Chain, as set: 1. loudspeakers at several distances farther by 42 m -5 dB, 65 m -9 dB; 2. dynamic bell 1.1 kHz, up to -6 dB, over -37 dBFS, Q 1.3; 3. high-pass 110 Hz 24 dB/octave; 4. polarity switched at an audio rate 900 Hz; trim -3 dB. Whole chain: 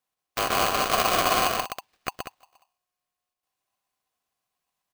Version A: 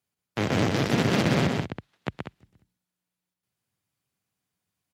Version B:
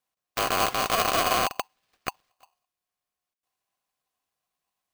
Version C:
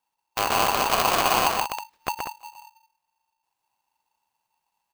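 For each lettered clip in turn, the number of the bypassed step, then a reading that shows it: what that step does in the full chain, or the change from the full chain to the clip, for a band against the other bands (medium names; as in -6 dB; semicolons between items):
4, 125 Hz band +19.0 dB; 1, momentary loudness spread change -1 LU; 3, 1 kHz band +2.0 dB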